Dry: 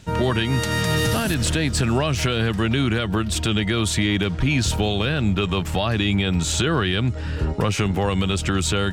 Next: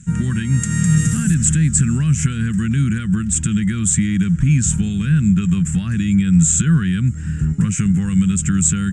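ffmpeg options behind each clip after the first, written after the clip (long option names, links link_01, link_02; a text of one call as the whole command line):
ffmpeg -i in.wav -af "firequalizer=gain_entry='entry(110,0);entry(160,13);entry(340,-13);entry(620,-29);entry(1500,-3);entry(4300,-19);entry(7400,14);entry(14000,-25)':delay=0.05:min_phase=1,volume=1dB" out.wav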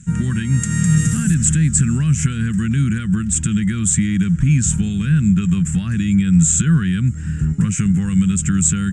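ffmpeg -i in.wav -af anull out.wav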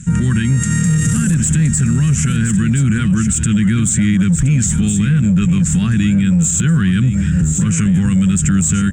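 ffmpeg -i in.wav -filter_complex "[0:a]asplit=2[link_01][link_02];[link_02]asoftclip=type=hard:threshold=-13dB,volume=-9dB[link_03];[link_01][link_03]amix=inputs=2:normalize=0,aecho=1:1:1021:0.299,alimiter=level_in=12.5dB:limit=-1dB:release=50:level=0:latency=1,volume=-6.5dB" out.wav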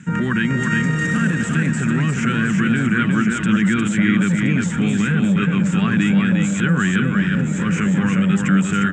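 ffmpeg -i in.wav -af "highpass=340,lowpass=2200,aecho=1:1:355:0.631,volume=6dB" out.wav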